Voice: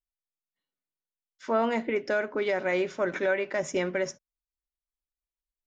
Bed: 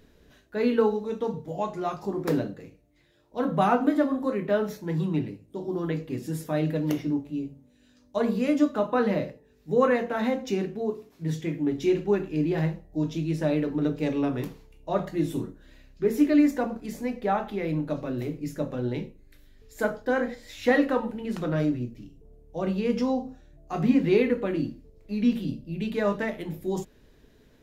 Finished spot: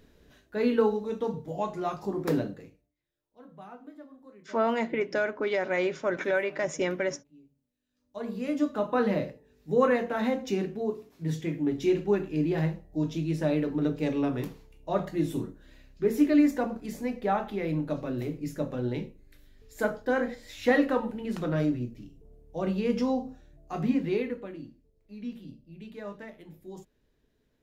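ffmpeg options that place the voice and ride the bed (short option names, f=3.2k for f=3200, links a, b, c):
-filter_complex "[0:a]adelay=3050,volume=-0.5dB[a];[1:a]volume=21.5dB,afade=t=out:st=2.54:d=0.42:silence=0.0707946,afade=t=in:st=7.89:d=1.13:silence=0.0707946,afade=t=out:st=23.43:d=1.15:silence=0.223872[b];[a][b]amix=inputs=2:normalize=0"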